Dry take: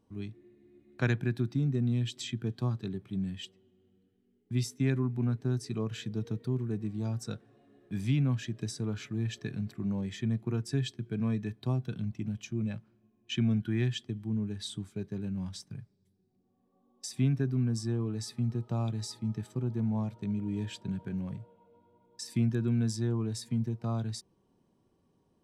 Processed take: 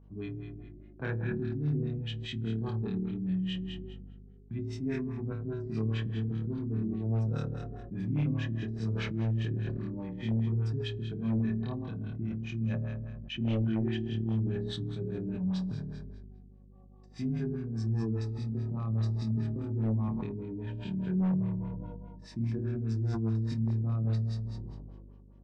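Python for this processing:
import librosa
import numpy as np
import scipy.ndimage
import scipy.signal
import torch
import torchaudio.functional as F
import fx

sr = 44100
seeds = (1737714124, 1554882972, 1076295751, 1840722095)

p1 = fx.over_compress(x, sr, threshold_db=-36.0, ratio=-0.5)
p2 = x + F.gain(torch.from_numpy(p1), -1.0).numpy()
p3 = fx.high_shelf(p2, sr, hz=7500.0, db=-4.0)
p4 = fx.room_flutter(p3, sr, wall_m=4.6, rt60_s=1.0)
p5 = 10.0 ** (-14.5 / 20.0) * (np.abs((p4 / 10.0 ** (-14.5 / 20.0) + 3.0) % 4.0 - 2.0) - 1.0)
p6 = fx.filter_lfo_lowpass(p5, sr, shape='sine', hz=4.9, low_hz=330.0, high_hz=3200.0, q=0.93)
p7 = fx.add_hum(p6, sr, base_hz=50, snr_db=23)
p8 = fx.sustainer(p7, sr, db_per_s=25.0)
y = F.gain(torch.from_numpy(p8), -9.0).numpy()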